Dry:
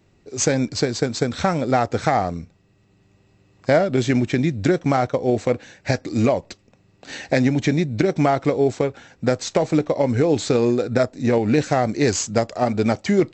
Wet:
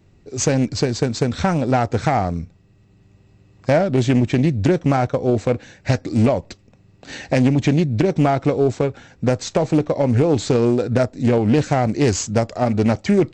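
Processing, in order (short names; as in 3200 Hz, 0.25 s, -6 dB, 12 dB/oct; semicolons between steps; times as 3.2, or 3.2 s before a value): low shelf 190 Hz +9 dB; soft clip -5 dBFS, distortion -24 dB; Doppler distortion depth 0.24 ms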